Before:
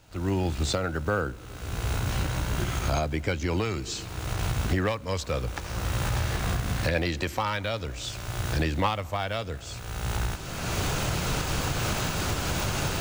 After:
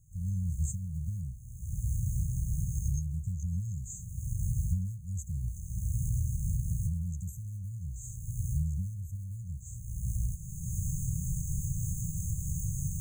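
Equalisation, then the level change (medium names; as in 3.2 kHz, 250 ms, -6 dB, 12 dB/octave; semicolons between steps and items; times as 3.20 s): brick-wall FIR band-stop 190–6200 Hz; treble shelf 8.7 kHz -4 dB; -2.0 dB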